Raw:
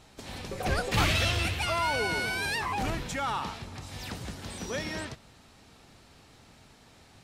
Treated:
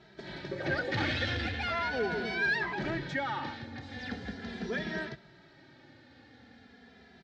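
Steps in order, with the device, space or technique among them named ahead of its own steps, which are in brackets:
barber-pole flanger into a guitar amplifier (barber-pole flanger 2.6 ms −0.4 Hz; soft clipping −27 dBFS, distortion −13 dB; loudspeaker in its box 86–4,300 Hz, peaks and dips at 98 Hz −5 dB, 240 Hz +5 dB, 360 Hz +4 dB, 1,100 Hz −10 dB, 1,700 Hz +9 dB, 2,700 Hz −7 dB)
level +2.5 dB

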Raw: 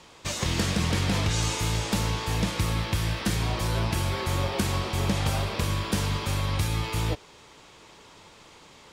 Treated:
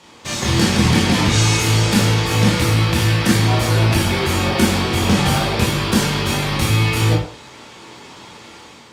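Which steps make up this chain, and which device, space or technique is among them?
far-field microphone of a smart speaker (convolution reverb RT60 0.45 s, pre-delay 17 ms, DRR −2.5 dB; high-pass filter 88 Hz; automatic gain control gain up to 5 dB; level +2.5 dB; Opus 48 kbit/s 48,000 Hz)

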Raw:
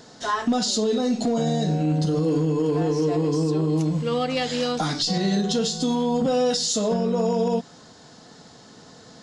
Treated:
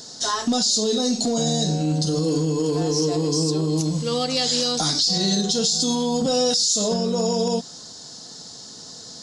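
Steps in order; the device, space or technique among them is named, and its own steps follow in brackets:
over-bright horn tweeter (high shelf with overshoot 3,400 Hz +12 dB, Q 1.5; brickwall limiter −11.5 dBFS, peak gain reduction 10.5 dB)

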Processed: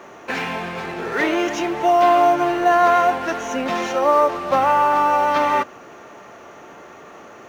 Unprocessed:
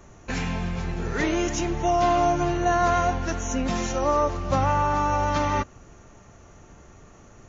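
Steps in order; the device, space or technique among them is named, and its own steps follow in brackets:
phone line with mismatched companding (band-pass filter 380–3,300 Hz; mu-law and A-law mismatch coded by mu)
level +7 dB

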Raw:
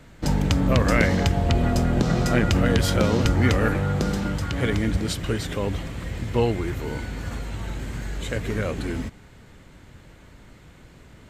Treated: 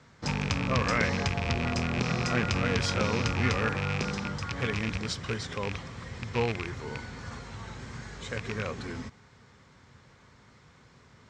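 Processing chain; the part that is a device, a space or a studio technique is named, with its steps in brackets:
car door speaker with a rattle (loose part that buzzes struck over −22 dBFS, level −15 dBFS; loudspeaker in its box 100–7,100 Hz, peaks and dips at 180 Hz −4 dB, 310 Hz −10 dB, 620 Hz −5 dB, 1,100 Hz +5 dB, 2,800 Hz −4 dB, 5,400 Hz +6 dB)
level −5 dB

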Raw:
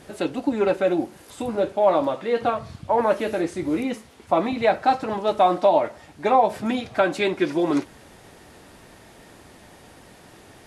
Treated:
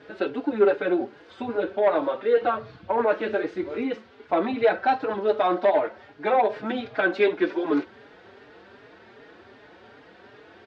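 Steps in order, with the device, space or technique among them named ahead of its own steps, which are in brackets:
barber-pole flanger into a guitar amplifier (barber-pole flanger 4.4 ms +2.6 Hz; soft clipping −14 dBFS, distortion −16 dB; loudspeaker in its box 110–4,200 Hz, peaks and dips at 160 Hz −10 dB, 430 Hz +8 dB, 1,500 Hz +8 dB)

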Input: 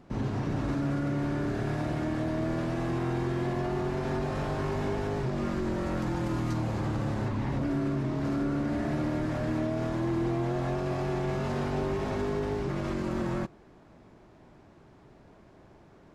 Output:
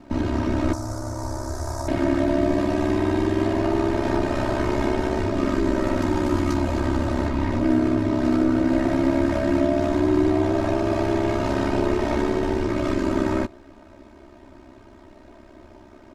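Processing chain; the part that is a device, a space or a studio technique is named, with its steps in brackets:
0:02.42–0:03.40: notch filter 1,400 Hz, Q 7
ring-modulated robot voice (ring modulation 33 Hz; comb filter 3.2 ms, depth 87%)
0:00.73–0:01.88: drawn EQ curve 100 Hz 0 dB, 180 Hz −20 dB, 1,000 Hz 0 dB, 2,900 Hz −24 dB, 5,500 Hz +9 dB
level +9 dB

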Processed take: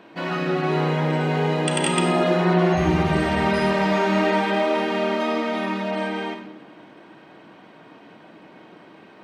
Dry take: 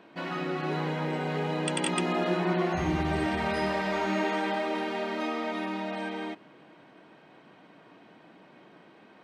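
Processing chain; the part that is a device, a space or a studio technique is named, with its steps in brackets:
bathroom (convolution reverb RT60 0.90 s, pre-delay 32 ms, DRR 4 dB)
level +6 dB

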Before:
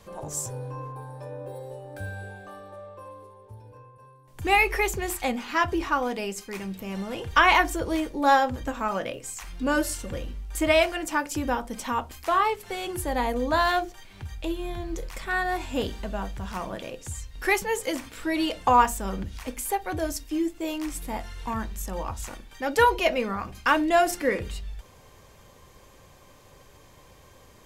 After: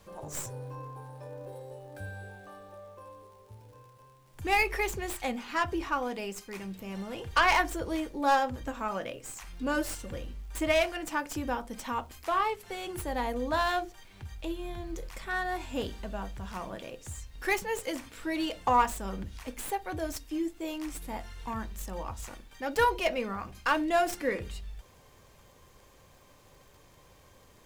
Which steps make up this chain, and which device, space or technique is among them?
record under a worn stylus (stylus tracing distortion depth 0.07 ms; surface crackle; pink noise bed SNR 36 dB)
level −5.5 dB

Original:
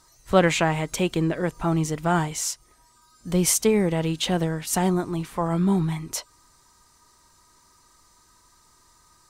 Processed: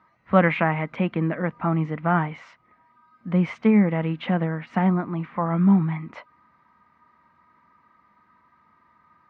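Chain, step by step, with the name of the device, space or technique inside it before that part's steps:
bass cabinet (loudspeaker in its box 86–2,300 Hz, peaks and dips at 110 Hz −9 dB, 210 Hz +8 dB, 390 Hz −8 dB, 1,200 Hz +4 dB, 2,100 Hz +5 dB)

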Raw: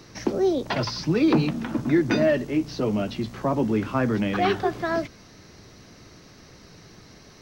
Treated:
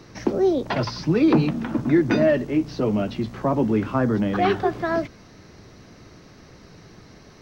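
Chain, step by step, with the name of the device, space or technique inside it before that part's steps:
behind a face mask (high-shelf EQ 3,100 Hz −7.5 dB)
0:03.96–0:04.39: parametric band 2,400 Hz −8.5 dB 0.58 octaves
level +2.5 dB

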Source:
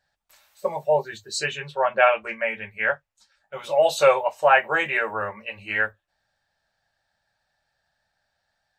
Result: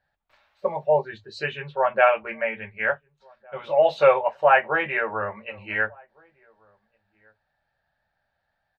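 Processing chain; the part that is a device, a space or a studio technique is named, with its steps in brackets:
shout across a valley (high-frequency loss of the air 330 metres; slap from a distant wall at 250 metres, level −29 dB)
0:04.79–0:05.54: low-pass filter 4,200 Hz
level +1.5 dB

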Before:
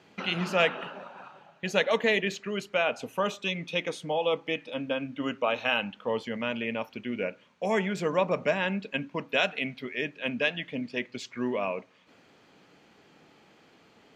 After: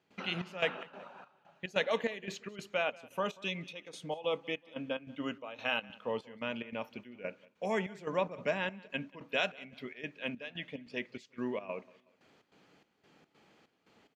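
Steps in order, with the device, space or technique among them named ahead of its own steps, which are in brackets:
trance gate with a delay (gate pattern ".xxx..xx" 145 BPM −12 dB; repeating echo 185 ms, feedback 40%, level −23 dB)
level −6 dB

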